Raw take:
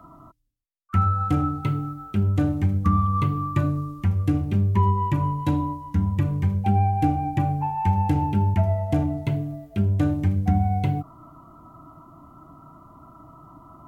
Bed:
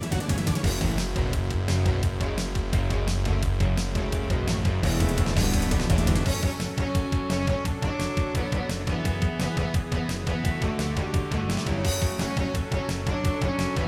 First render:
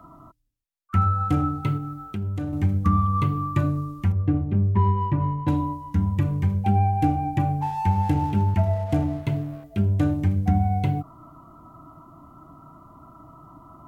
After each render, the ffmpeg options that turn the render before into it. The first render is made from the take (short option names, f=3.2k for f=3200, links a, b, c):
-filter_complex "[0:a]asettb=1/sr,asplit=3[a][b][c];[a]atrim=end=1.774[d];[b]atrim=start=1.77:end=2.53,asetpts=PTS-STARTPTS,afade=t=in:d=0.004:c=qsin,afade=t=out:st=0.756:d=0.004:c=qsin,acompressor=threshold=-28dB:ratio=2.5:attack=3.2:release=140:knee=1:detection=peak[e];[c]atrim=start=2.526[f];[d][e]acrossfade=d=0.004:c1=hsin:c2=qsin[g];[g][f]acrossfade=d=0.004:c1=qsin:c2=hsin,asettb=1/sr,asplit=3[h][i][j];[h]atrim=end=4.124[k];[i]atrim=start=4.12:end=5.48,asetpts=PTS-STARTPTS,afade=t=in:d=0.004:c=qsin,afade=t=out:st=1.356:d=0.004:c=qsin,adynamicsmooth=sensitivity=0.5:basefreq=1.5k[l];[j]atrim=start=5.476[m];[k][l]acrossfade=d=0.004:c1=hsin:c2=qsin[n];[n][m]acrossfade=d=0.004:c1=qsin:c2=hsin,asettb=1/sr,asplit=3[o][p][q];[o]atrim=end=7.614[r];[p]atrim=start=7.61:end=9.64,asetpts=PTS-STARTPTS,afade=t=in:d=0.004:c=qsin,afade=t=out:st=2.026:d=0.004:c=qsin,aeval=exprs='sgn(val(0))*max(abs(val(0))-0.00531,0)':c=same[s];[q]atrim=start=9.636[t];[r][s]acrossfade=d=0.004:c1=hsin:c2=qsin[u];[u][t]acrossfade=d=0.004:c1=qsin:c2=hsin"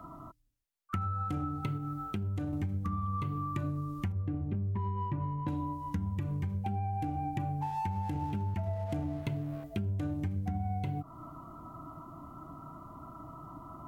-af "alimiter=limit=-15dB:level=0:latency=1:release=93,acompressor=threshold=-32dB:ratio=5"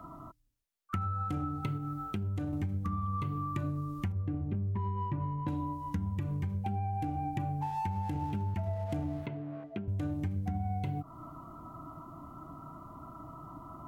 -filter_complex "[0:a]asettb=1/sr,asplit=3[a][b][c];[a]atrim=end=9.264[d];[b]atrim=start=9.26:end=9.88,asetpts=PTS-STARTPTS,afade=t=in:d=0.004:c=qsin,afade=t=out:st=0.616:d=0.004:c=qsin,highpass=190,lowpass=2.4k[e];[c]atrim=start=9.876[f];[d][e]acrossfade=d=0.004:c1=hsin:c2=qsin[g];[g][f]acrossfade=d=0.004:c1=qsin:c2=hsin"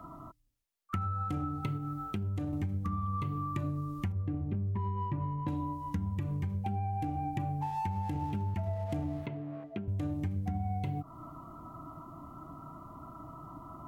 -af "bandreject=f=1.5k:w=18"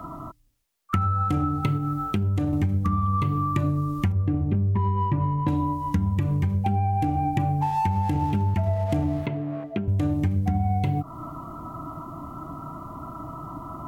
-af "volume=10.5dB"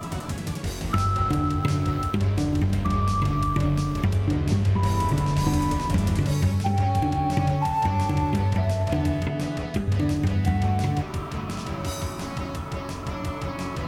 -filter_complex "[1:a]volume=-5.5dB[a];[0:a][a]amix=inputs=2:normalize=0"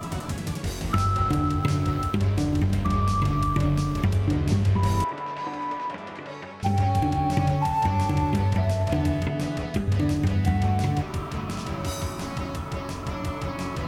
-filter_complex "[0:a]asettb=1/sr,asplit=3[a][b][c];[a]atrim=end=1.584[d];[b]atrim=start=1.58:end=2.88,asetpts=PTS-STARTPTS,afade=t=in:d=0.004:c=qsin,afade=t=out:st=1.296:d=0.004:c=qsin,aeval=exprs='sgn(val(0))*max(abs(val(0))-0.00188,0)':c=same[e];[c]atrim=start=2.876[f];[d][e]acrossfade=d=0.004:c1=hsin:c2=qsin[g];[g][f]acrossfade=d=0.004:c1=qsin:c2=hsin,asettb=1/sr,asplit=3[h][i][j];[h]atrim=end=5.044[k];[i]atrim=start=5.04:end=6.63,asetpts=PTS-STARTPTS,afade=t=in:d=0.004:c=qsin,afade=t=out:st=1.586:d=0.004:c=qsin,highpass=540,lowpass=2.4k[l];[j]atrim=start=6.626[m];[k][l]acrossfade=d=0.004:c1=hsin:c2=qsin[n];[n][m]acrossfade=d=0.004:c1=qsin:c2=hsin"